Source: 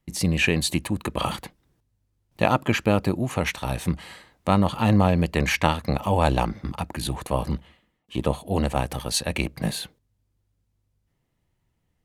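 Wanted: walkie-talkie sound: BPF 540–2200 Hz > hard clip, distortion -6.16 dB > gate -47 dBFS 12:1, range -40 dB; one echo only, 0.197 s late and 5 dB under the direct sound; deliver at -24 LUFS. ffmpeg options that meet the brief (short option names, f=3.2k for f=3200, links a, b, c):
-af "highpass=540,lowpass=2.2k,aecho=1:1:197:0.562,asoftclip=type=hard:threshold=-24dB,agate=range=-40dB:threshold=-47dB:ratio=12,volume=8dB"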